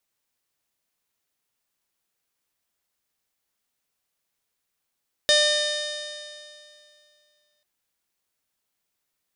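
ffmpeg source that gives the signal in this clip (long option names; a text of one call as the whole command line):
ffmpeg -f lavfi -i "aevalsrc='0.1*pow(10,-3*t/2.47)*sin(2*PI*596.48*t)+0.0119*pow(10,-3*t/2.47)*sin(2*PI*1195.81*t)+0.075*pow(10,-3*t/2.47)*sin(2*PI*1800.83*t)+0.0141*pow(10,-3*t/2.47)*sin(2*PI*2414.32*t)+0.0422*pow(10,-3*t/2.47)*sin(2*PI*3039.02*t)+0.126*pow(10,-3*t/2.47)*sin(2*PI*3677.55*t)+0.0316*pow(10,-3*t/2.47)*sin(2*PI*4332.46*t)+0.0631*pow(10,-3*t/2.47)*sin(2*PI*5006.17*t)+0.0316*pow(10,-3*t/2.47)*sin(2*PI*5701*t)+0.0266*pow(10,-3*t/2.47)*sin(2*PI*6419.12*t)+0.02*pow(10,-3*t/2.47)*sin(2*PI*7162.56*t)+0.0112*pow(10,-3*t/2.47)*sin(2*PI*7933.24*t)+0.0141*pow(10,-3*t/2.47)*sin(2*PI*8732.93*t)+0.02*pow(10,-3*t/2.47)*sin(2*PI*9563.26*t)':duration=2.34:sample_rate=44100" out.wav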